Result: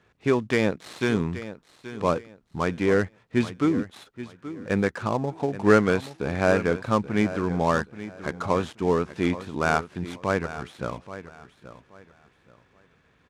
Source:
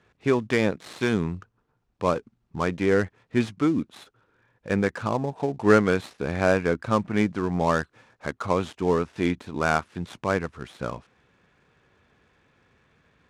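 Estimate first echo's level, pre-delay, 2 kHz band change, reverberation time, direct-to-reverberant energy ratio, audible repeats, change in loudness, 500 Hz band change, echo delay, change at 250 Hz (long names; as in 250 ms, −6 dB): −14.0 dB, no reverb audible, 0.0 dB, no reverb audible, no reverb audible, 2, 0.0 dB, 0.0 dB, 828 ms, 0.0 dB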